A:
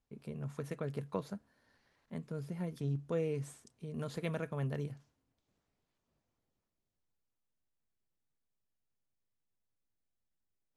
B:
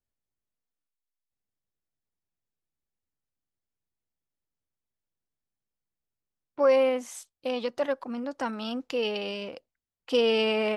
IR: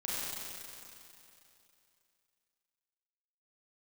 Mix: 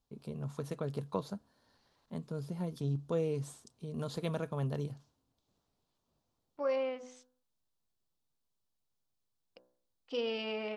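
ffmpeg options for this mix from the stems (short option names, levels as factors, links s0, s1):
-filter_complex "[0:a]equalizer=f=1000:t=o:w=1:g=4,equalizer=f=2000:t=o:w=1:g=-9,equalizer=f=4000:t=o:w=1:g=6,volume=1.19[s0];[1:a]agate=range=0.355:threshold=0.00708:ratio=16:detection=peak,lowpass=f=6200:w=0.5412,lowpass=f=6200:w=1.3066,bandreject=f=63.04:t=h:w=4,bandreject=f=126.08:t=h:w=4,bandreject=f=189.12:t=h:w=4,bandreject=f=252.16:t=h:w=4,bandreject=f=315.2:t=h:w=4,bandreject=f=378.24:t=h:w=4,bandreject=f=441.28:t=h:w=4,bandreject=f=504.32:t=h:w=4,bandreject=f=567.36:t=h:w=4,bandreject=f=630.4:t=h:w=4,bandreject=f=693.44:t=h:w=4,bandreject=f=756.48:t=h:w=4,bandreject=f=819.52:t=h:w=4,bandreject=f=882.56:t=h:w=4,bandreject=f=945.6:t=h:w=4,bandreject=f=1008.64:t=h:w=4,bandreject=f=1071.68:t=h:w=4,bandreject=f=1134.72:t=h:w=4,bandreject=f=1197.76:t=h:w=4,bandreject=f=1260.8:t=h:w=4,bandreject=f=1323.84:t=h:w=4,bandreject=f=1386.88:t=h:w=4,bandreject=f=1449.92:t=h:w=4,bandreject=f=1512.96:t=h:w=4,bandreject=f=1576:t=h:w=4,bandreject=f=1639.04:t=h:w=4,bandreject=f=1702.08:t=h:w=4,volume=0.266,asplit=3[s1][s2][s3];[s1]atrim=end=7.43,asetpts=PTS-STARTPTS,afade=t=out:st=7.426:d=0.004:c=hsin[s4];[s2]atrim=start=7.43:end=9.56,asetpts=PTS-STARTPTS,volume=0[s5];[s3]atrim=start=9.56,asetpts=PTS-STARTPTS,afade=t=in:d=0.004:c=hsin[s6];[s4][s5][s6]concat=n=3:v=0:a=1[s7];[s0][s7]amix=inputs=2:normalize=0"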